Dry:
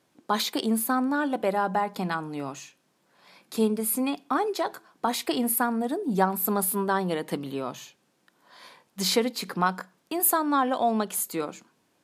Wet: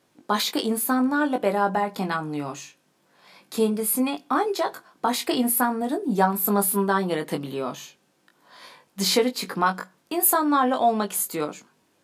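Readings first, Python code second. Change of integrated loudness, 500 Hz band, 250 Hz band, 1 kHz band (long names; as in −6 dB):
+3.0 dB, +3.0 dB, +3.0 dB, +3.0 dB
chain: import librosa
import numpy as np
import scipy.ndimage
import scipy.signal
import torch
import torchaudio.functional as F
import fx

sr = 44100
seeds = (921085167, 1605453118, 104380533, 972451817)

y = fx.doubler(x, sr, ms=20.0, db=-5.5)
y = F.gain(torch.from_numpy(y), 2.0).numpy()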